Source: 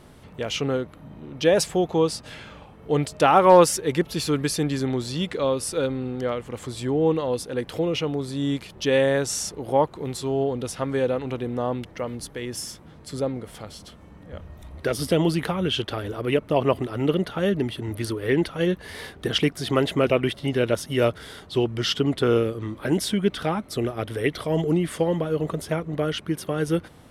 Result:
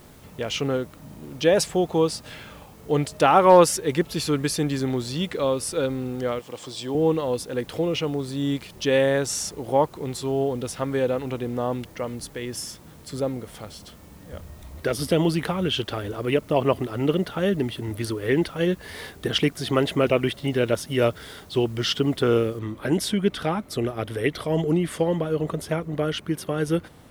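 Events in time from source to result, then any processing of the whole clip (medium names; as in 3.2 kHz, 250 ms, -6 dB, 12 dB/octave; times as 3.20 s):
6.39–6.95 s: cabinet simulation 200–9300 Hz, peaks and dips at 230 Hz -6 dB, 390 Hz -4 dB, 1.4 kHz -6 dB, 2 kHz -6 dB, 3.3 kHz +6 dB, 5.2 kHz +7 dB
22.59 s: noise floor step -57 dB -68 dB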